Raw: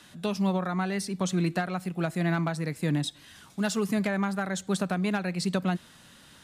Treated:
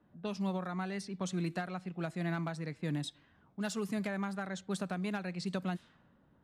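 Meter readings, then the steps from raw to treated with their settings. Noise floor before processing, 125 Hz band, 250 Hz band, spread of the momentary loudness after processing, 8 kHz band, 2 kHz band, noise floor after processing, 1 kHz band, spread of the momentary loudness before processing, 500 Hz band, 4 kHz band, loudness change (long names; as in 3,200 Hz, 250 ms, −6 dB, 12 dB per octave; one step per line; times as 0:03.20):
−54 dBFS, −8.5 dB, −8.5 dB, 5 LU, −10.0 dB, −8.5 dB, −67 dBFS, −8.5 dB, 5 LU, −8.5 dB, −9.0 dB, −8.5 dB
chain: low-pass that shuts in the quiet parts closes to 640 Hz, open at −23.5 dBFS
level −8.5 dB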